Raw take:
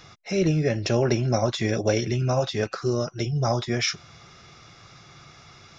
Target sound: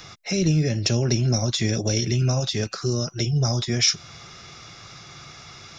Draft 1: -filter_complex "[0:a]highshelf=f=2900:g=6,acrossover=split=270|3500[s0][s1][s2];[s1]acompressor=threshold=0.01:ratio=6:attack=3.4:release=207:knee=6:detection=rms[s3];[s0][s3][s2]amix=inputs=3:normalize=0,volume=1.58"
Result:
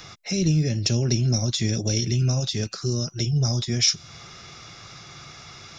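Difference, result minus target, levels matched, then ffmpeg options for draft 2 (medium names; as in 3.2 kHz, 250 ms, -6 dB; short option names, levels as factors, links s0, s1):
compression: peak gain reduction +6.5 dB
-filter_complex "[0:a]highshelf=f=2900:g=6,acrossover=split=270|3500[s0][s1][s2];[s1]acompressor=threshold=0.0251:ratio=6:attack=3.4:release=207:knee=6:detection=rms[s3];[s0][s3][s2]amix=inputs=3:normalize=0,volume=1.58"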